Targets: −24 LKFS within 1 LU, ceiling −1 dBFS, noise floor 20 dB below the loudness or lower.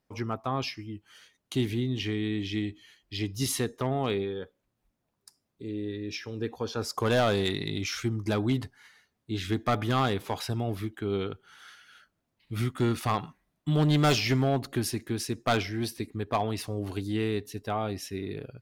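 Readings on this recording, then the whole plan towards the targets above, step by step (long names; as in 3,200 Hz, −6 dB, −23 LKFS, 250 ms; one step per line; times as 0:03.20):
share of clipped samples 0.5%; peaks flattened at −18.5 dBFS; integrated loudness −30.0 LKFS; sample peak −18.5 dBFS; target loudness −24.0 LKFS
→ clipped peaks rebuilt −18.5 dBFS
level +6 dB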